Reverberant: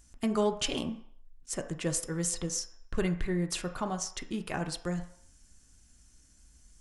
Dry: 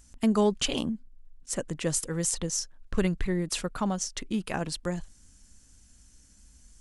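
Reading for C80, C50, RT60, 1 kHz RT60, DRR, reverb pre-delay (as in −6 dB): 14.0 dB, 11.0 dB, 0.60 s, 0.65 s, 4.5 dB, 3 ms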